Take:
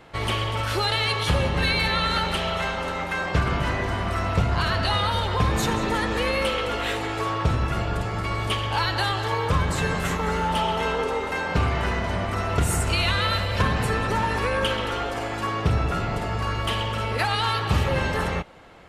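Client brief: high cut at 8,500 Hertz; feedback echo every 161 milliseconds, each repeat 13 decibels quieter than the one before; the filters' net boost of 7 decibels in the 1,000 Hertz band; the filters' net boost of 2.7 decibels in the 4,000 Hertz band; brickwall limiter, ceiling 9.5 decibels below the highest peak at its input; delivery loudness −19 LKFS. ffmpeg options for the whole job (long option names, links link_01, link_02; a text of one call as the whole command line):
ffmpeg -i in.wav -af "lowpass=8500,equalizer=frequency=1000:width_type=o:gain=8.5,equalizer=frequency=4000:width_type=o:gain=3,alimiter=limit=-15.5dB:level=0:latency=1,aecho=1:1:161|322|483:0.224|0.0493|0.0108,volume=5dB" out.wav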